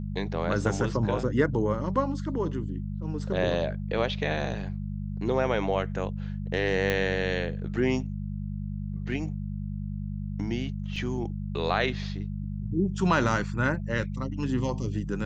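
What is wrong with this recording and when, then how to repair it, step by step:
hum 50 Hz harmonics 4 -33 dBFS
6.9 pop -13 dBFS
10.96 gap 4.3 ms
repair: de-click; de-hum 50 Hz, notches 4; interpolate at 10.96, 4.3 ms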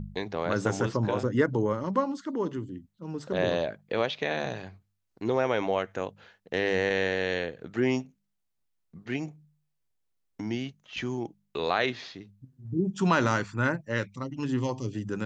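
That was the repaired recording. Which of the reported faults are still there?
none

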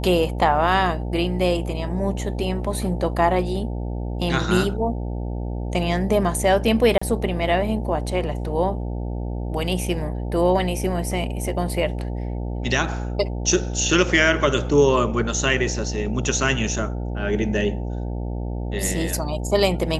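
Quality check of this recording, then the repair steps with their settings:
buzz 60 Hz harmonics 15 -27 dBFS
6.98–7.01 gap 35 ms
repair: de-hum 60 Hz, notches 15; interpolate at 6.98, 35 ms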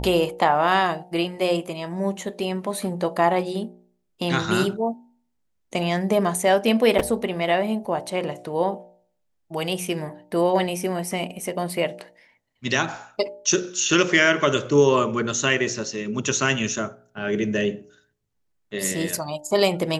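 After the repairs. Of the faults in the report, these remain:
none

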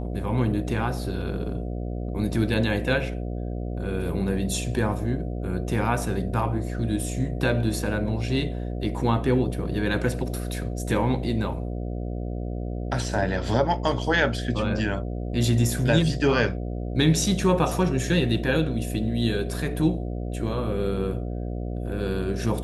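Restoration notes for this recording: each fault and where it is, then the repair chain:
buzz 60 Hz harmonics 12 -30 dBFS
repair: de-hum 60 Hz, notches 12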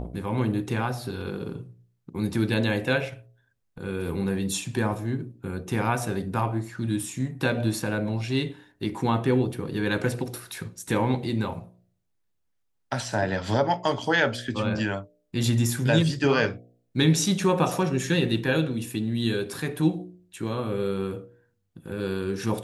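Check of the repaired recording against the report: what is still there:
none

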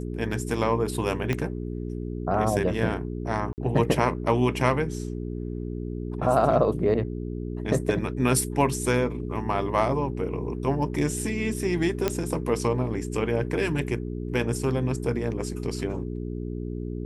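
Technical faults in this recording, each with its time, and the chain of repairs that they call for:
hum 60 Hz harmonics 7 -32 dBFS
1.33 pop -13 dBFS
3.53–3.58 gap 49 ms
12.08 pop -9 dBFS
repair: de-click; de-hum 60 Hz, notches 7; interpolate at 3.53, 49 ms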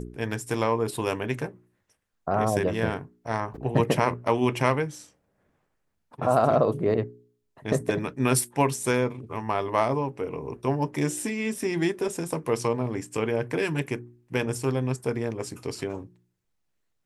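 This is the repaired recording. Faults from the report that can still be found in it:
1.33 pop

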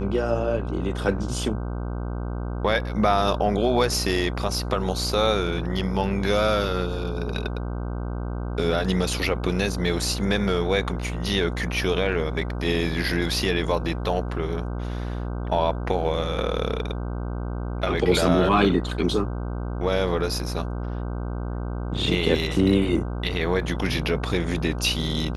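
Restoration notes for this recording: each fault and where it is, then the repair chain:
buzz 60 Hz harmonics 26 -29 dBFS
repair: de-hum 60 Hz, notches 26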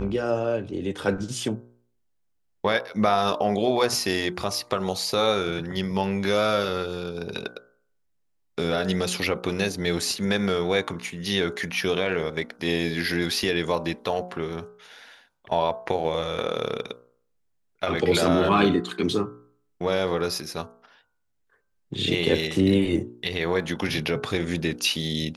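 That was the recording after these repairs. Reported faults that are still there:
none

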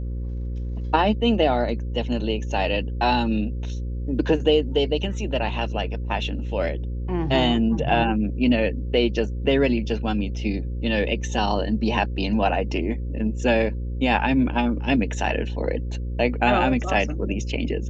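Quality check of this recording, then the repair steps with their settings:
buzz 60 Hz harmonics 9 -28 dBFS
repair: de-hum 60 Hz, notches 9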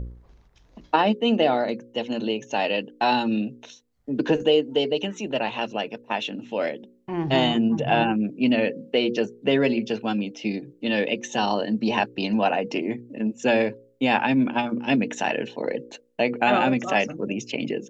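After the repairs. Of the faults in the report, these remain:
none

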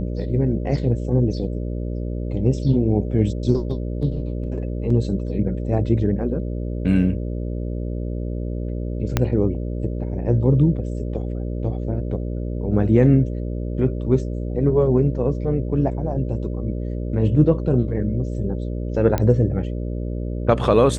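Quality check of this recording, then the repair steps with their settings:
buzz 60 Hz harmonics 10 -26 dBFS
9.17 pop -4 dBFS
19.18 pop -9 dBFS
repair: de-click; de-hum 60 Hz, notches 10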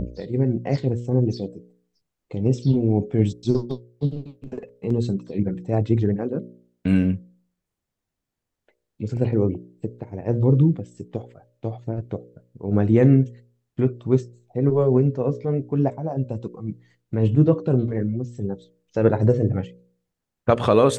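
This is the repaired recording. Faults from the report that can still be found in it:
9.17 pop

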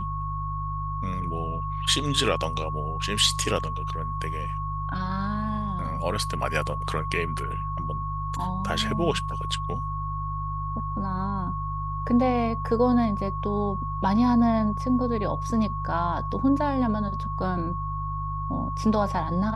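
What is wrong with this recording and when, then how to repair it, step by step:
hum 50 Hz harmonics 3 -32 dBFS
tone 1100 Hz -31 dBFS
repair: de-hum 50 Hz, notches 3; notch 1100 Hz, Q 30

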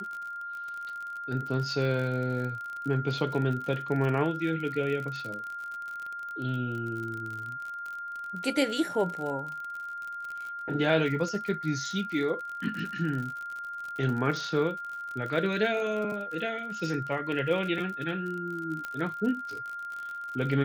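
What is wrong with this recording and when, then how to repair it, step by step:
crackle 49/s -35 dBFS
tone 1400 Hz -35 dBFS
18.85 pop -22 dBFS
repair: de-click; notch 1400 Hz, Q 30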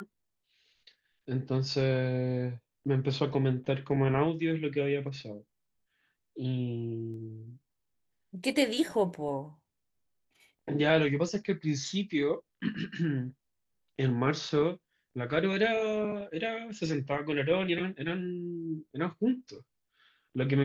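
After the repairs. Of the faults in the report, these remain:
18.85 pop

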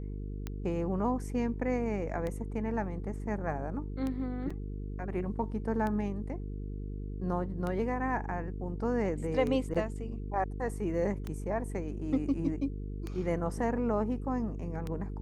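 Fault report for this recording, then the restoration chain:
buzz 50 Hz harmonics 9 -38 dBFS
tick 33 1/3 rpm -23 dBFS
4.5 gap 4.8 ms
9.74–9.75 gap 6.1 ms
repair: de-click; de-hum 50 Hz, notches 9; interpolate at 4.5, 4.8 ms; interpolate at 9.74, 6.1 ms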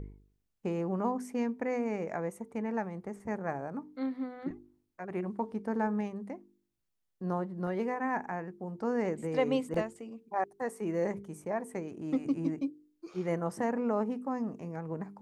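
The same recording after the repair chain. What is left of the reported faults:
none

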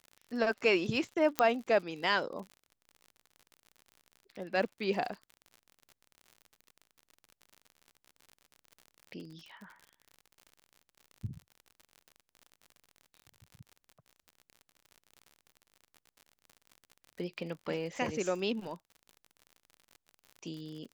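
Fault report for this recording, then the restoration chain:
crackle 58/s -42 dBFS
1.39 pop -10 dBFS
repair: de-click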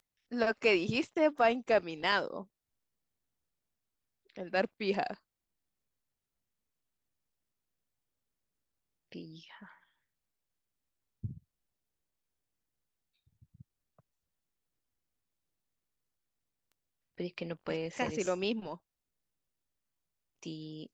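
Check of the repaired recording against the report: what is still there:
1.39 pop

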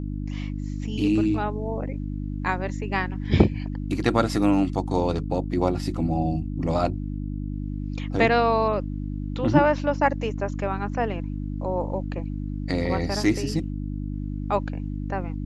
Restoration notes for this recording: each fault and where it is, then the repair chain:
hum 50 Hz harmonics 6 -30 dBFS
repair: de-hum 50 Hz, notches 6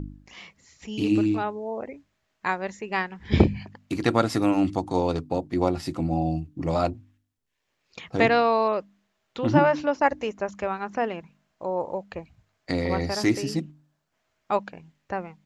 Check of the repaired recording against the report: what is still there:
none

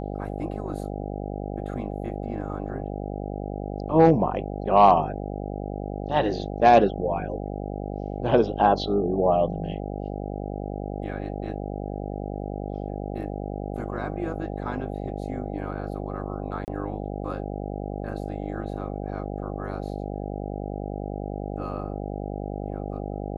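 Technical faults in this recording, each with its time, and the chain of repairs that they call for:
buzz 50 Hz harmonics 16 -32 dBFS
16.65–16.68 gap 29 ms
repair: de-hum 50 Hz, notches 16; interpolate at 16.65, 29 ms

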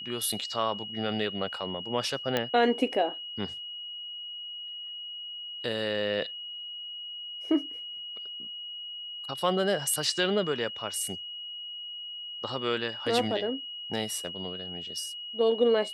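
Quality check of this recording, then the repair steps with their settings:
tone 2900 Hz -37 dBFS
2.37 pop -12 dBFS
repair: de-click; notch 2900 Hz, Q 30

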